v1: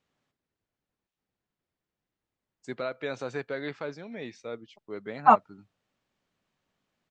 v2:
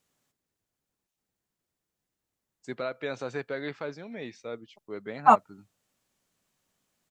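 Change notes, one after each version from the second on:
second voice: remove LPF 3700 Hz 12 dB/oct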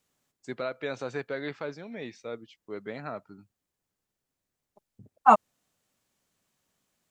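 first voice: entry -2.20 s

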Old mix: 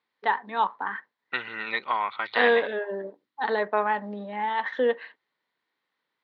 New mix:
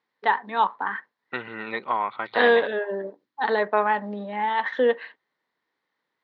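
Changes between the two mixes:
first voice +3.0 dB; second voice: add tilt shelf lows +7.5 dB, about 1200 Hz

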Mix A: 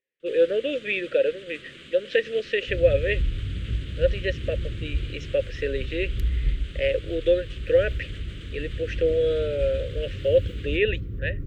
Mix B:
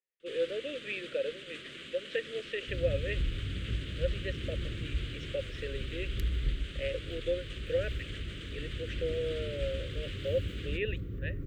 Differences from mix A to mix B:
speech -11.0 dB; master: add low shelf 170 Hz -8 dB

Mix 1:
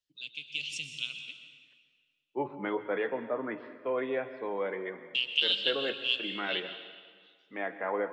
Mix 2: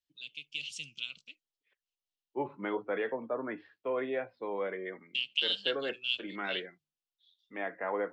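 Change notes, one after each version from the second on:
reverb: off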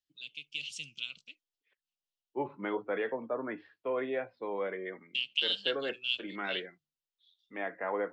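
none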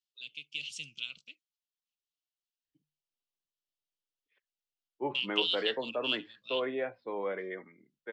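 second voice: entry +2.65 s

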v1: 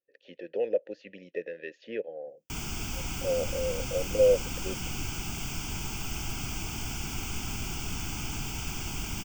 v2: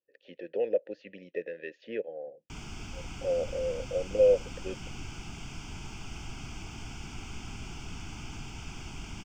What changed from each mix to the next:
background -5.5 dB; master: add air absorption 84 m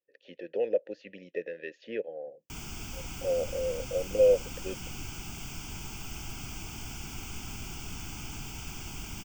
master: remove air absorption 84 m

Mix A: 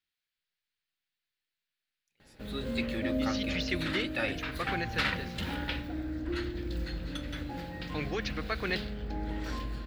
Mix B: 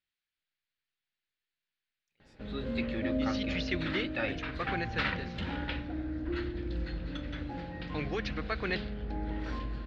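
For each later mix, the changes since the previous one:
background: add air absorption 85 m; master: add air absorption 100 m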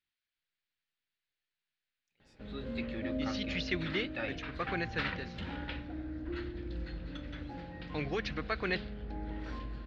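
background -4.5 dB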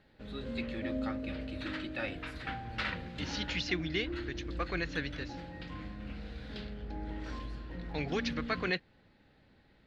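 background: entry -2.20 s; master: remove air absorption 100 m

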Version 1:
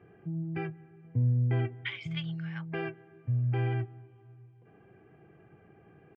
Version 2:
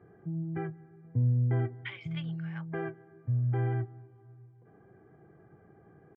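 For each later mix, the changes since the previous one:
speech: add tilt -4 dB/oct; background: add polynomial smoothing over 41 samples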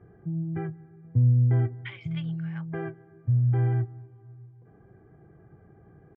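master: remove HPF 220 Hz 6 dB/oct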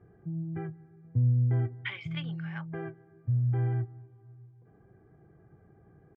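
speech +4.5 dB; background -4.5 dB

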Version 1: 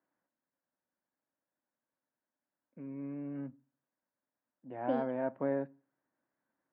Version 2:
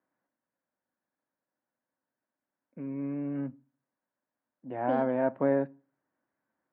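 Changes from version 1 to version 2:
first voice +7.0 dB; second voice: send +10.5 dB

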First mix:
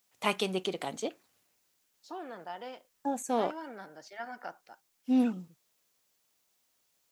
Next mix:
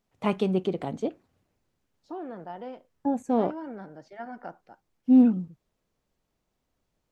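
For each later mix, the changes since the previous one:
master: add tilt -4.5 dB/oct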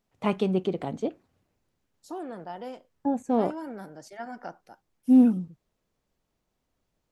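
second voice: remove air absorption 240 m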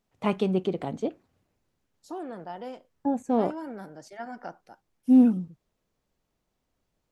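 second voice: add high shelf 11000 Hz -7.5 dB

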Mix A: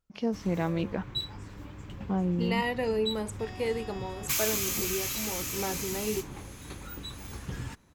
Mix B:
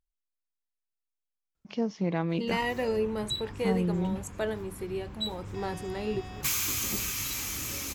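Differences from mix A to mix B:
first voice: entry +1.55 s; background: entry +2.15 s

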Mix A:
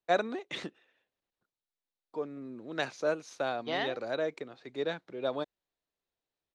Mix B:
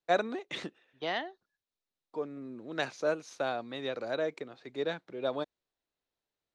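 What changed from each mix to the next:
second voice: entry -2.65 s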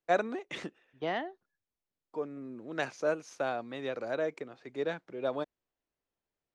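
second voice: add tilt -2 dB/oct; master: add bell 3900 Hz -7.5 dB 0.41 oct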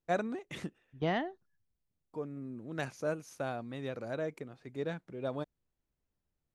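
first voice -5.0 dB; master: remove three-band isolator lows -14 dB, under 280 Hz, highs -23 dB, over 7600 Hz

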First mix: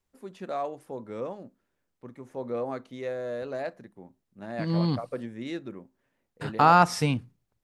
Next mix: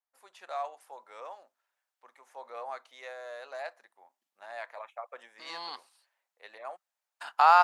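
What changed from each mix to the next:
second voice: entry +0.80 s; master: add Chebyshev high-pass 770 Hz, order 3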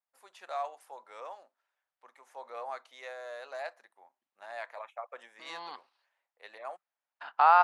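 second voice: add air absorption 280 m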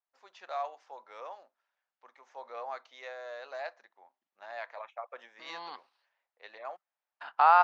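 first voice: add steep low-pass 6400 Hz 48 dB/oct

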